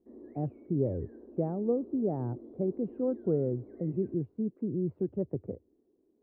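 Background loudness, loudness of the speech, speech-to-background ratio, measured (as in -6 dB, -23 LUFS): -50.0 LUFS, -33.0 LUFS, 17.0 dB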